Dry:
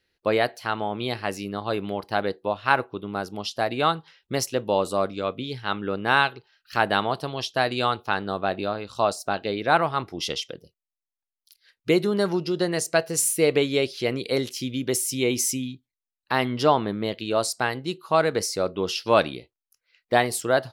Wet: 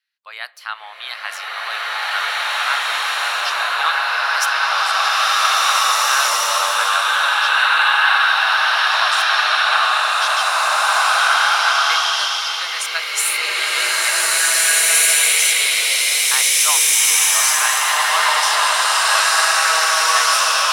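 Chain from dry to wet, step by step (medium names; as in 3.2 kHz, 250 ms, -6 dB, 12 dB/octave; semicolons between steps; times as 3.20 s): high-pass 1.1 kHz 24 dB/octave; level rider gain up to 11.5 dB; swelling reverb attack 1940 ms, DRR -12 dB; trim -5.5 dB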